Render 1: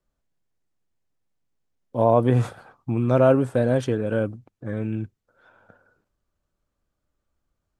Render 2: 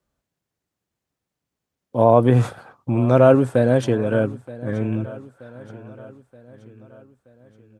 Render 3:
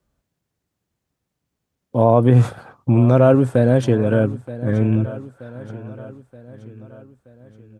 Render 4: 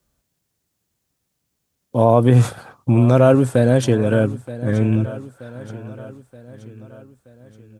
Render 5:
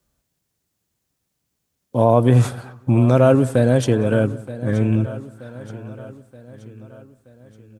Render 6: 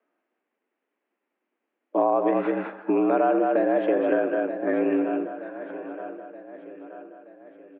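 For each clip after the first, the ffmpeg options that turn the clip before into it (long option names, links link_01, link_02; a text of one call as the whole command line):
ffmpeg -i in.wav -af "highpass=62,aecho=1:1:926|1852|2778|3704:0.119|0.0606|0.0309|0.0158,volume=4dB" out.wav
ffmpeg -i in.wav -filter_complex "[0:a]lowshelf=frequency=240:gain=6.5,asplit=2[link_01][link_02];[link_02]alimiter=limit=-9dB:level=0:latency=1:release=366,volume=3dB[link_03];[link_01][link_03]amix=inputs=2:normalize=0,volume=-5.5dB" out.wav
ffmpeg -i in.wav -af "highshelf=frequency=3500:gain=11" out.wav
ffmpeg -i in.wav -filter_complex "[0:a]asplit=2[link_01][link_02];[link_02]adelay=183,lowpass=frequency=2000:poles=1,volume=-20.5dB,asplit=2[link_03][link_04];[link_04]adelay=183,lowpass=frequency=2000:poles=1,volume=0.38,asplit=2[link_05][link_06];[link_06]adelay=183,lowpass=frequency=2000:poles=1,volume=0.38[link_07];[link_01][link_03][link_05][link_07]amix=inputs=4:normalize=0,volume=-1dB" out.wav
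ffmpeg -i in.wav -af "aecho=1:1:206:0.473,highpass=frequency=220:width_type=q:width=0.5412,highpass=frequency=220:width_type=q:width=1.307,lowpass=frequency=2500:width_type=q:width=0.5176,lowpass=frequency=2500:width_type=q:width=0.7071,lowpass=frequency=2500:width_type=q:width=1.932,afreqshift=69,acompressor=threshold=-20dB:ratio=5,volume=1.5dB" out.wav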